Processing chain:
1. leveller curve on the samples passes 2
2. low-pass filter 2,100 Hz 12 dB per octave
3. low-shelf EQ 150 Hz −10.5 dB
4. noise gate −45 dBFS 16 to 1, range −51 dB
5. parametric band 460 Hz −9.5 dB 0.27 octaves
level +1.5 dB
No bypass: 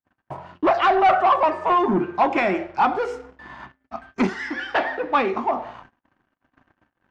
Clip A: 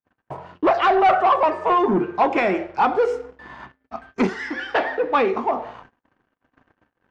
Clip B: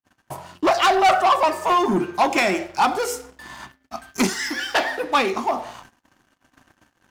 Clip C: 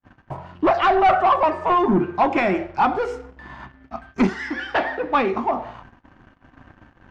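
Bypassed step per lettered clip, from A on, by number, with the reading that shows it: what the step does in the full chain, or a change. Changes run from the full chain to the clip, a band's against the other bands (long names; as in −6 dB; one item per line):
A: 5, 500 Hz band +2.5 dB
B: 2, 4 kHz band +9.0 dB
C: 3, 125 Hz band +4.5 dB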